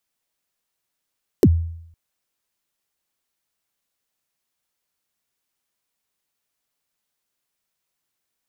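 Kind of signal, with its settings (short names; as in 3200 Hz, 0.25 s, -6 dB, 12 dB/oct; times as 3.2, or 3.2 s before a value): kick drum length 0.51 s, from 470 Hz, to 83 Hz, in 51 ms, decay 0.72 s, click on, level -6.5 dB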